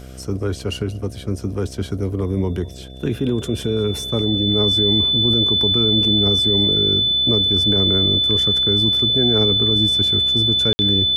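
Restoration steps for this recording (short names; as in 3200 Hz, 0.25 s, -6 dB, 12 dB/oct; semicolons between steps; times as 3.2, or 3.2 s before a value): de-hum 64.5 Hz, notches 11; notch 3500 Hz, Q 30; room tone fill 10.73–10.79; inverse comb 0.203 s -23 dB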